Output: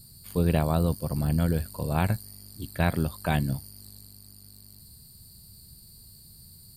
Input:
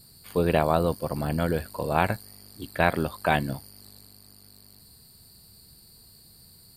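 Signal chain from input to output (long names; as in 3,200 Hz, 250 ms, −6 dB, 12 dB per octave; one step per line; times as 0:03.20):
bass and treble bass +13 dB, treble +10 dB
level −7 dB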